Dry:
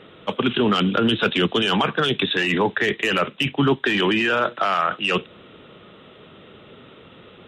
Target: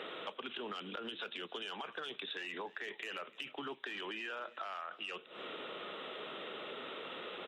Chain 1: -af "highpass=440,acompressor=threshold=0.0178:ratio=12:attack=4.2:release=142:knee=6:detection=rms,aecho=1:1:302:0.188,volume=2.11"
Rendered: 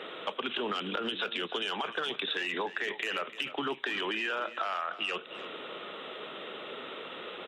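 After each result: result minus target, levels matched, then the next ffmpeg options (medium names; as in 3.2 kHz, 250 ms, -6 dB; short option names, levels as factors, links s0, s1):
compression: peak gain reduction -9.5 dB; echo-to-direct +7.5 dB
-af "highpass=440,acompressor=threshold=0.00531:ratio=12:attack=4.2:release=142:knee=6:detection=rms,aecho=1:1:302:0.188,volume=2.11"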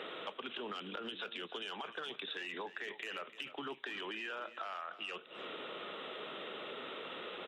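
echo-to-direct +7.5 dB
-af "highpass=440,acompressor=threshold=0.00531:ratio=12:attack=4.2:release=142:knee=6:detection=rms,aecho=1:1:302:0.0794,volume=2.11"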